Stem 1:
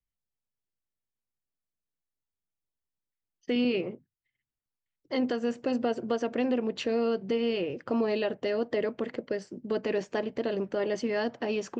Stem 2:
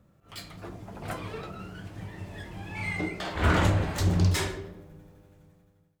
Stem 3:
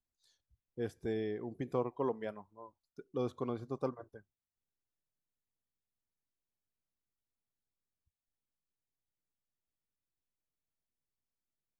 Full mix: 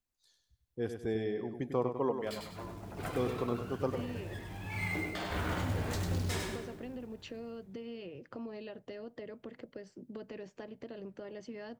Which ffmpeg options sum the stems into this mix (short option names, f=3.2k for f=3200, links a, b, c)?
-filter_complex "[0:a]acrossover=split=140[a][b];[b]acompressor=threshold=-40dB:ratio=4[c];[a][c]amix=inputs=2:normalize=0,adelay=450,volume=-5dB[d];[1:a]alimiter=limit=-21.5dB:level=0:latency=1:release=287,acrusher=bits=5:mode=log:mix=0:aa=0.000001,adelay=1950,volume=-5dB,asplit=2[e][f];[f]volume=-4.5dB[g];[2:a]volume=2dB,asplit=2[h][i];[i]volume=-7.5dB[j];[g][j]amix=inputs=2:normalize=0,aecho=0:1:99|198|297|396|495:1|0.36|0.13|0.0467|0.0168[k];[d][e][h][k]amix=inputs=4:normalize=0"